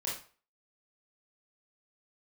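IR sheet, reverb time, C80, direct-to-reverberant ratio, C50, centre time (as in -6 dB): 0.40 s, 10.0 dB, -6.0 dB, 3.5 dB, 39 ms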